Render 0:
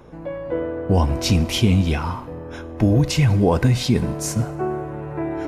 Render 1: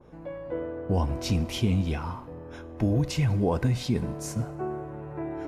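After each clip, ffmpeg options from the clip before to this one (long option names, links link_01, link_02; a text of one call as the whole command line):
ffmpeg -i in.wav -af "adynamicequalizer=threshold=0.01:dfrequency=1500:dqfactor=0.7:tfrequency=1500:tqfactor=0.7:attack=5:release=100:ratio=0.375:range=1.5:mode=cutabove:tftype=highshelf,volume=-8dB" out.wav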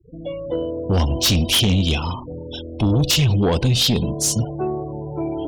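ffmpeg -i in.wav -af "highshelf=frequency=2400:width_type=q:width=3:gain=9.5,afftfilt=real='re*gte(hypot(re,im),0.0126)':imag='im*gte(hypot(re,im),0.0126)':win_size=1024:overlap=0.75,aeval=exprs='0.355*sin(PI/2*2.82*val(0)/0.355)':channel_layout=same,volume=-3.5dB" out.wav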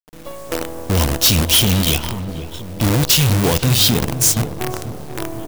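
ffmpeg -i in.wav -filter_complex "[0:a]acrusher=bits=4:dc=4:mix=0:aa=0.000001,crystalizer=i=1:c=0,asplit=2[link_01][link_02];[link_02]adelay=487,lowpass=frequency=1000:poles=1,volume=-10dB,asplit=2[link_03][link_04];[link_04]adelay=487,lowpass=frequency=1000:poles=1,volume=0.5,asplit=2[link_05][link_06];[link_06]adelay=487,lowpass=frequency=1000:poles=1,volume=0.5,asplit=2[link_07][link_08];[link_08]adelay=487,lowpass=frequency=1000:poles=1,volume=0.5,asplit=2[link_09][link_10];[link_10]adelay=487,lowpass=frequency=1000:poles=1,volume=0.5[link_11];[link_01][link_03][link_05][link_07][link_09][link_11]amix=inputs=6:normalize=0" out.wav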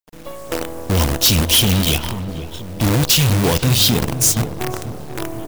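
ffmpeg -i in.wav -ar 44100 -c:a nellymoser out.flv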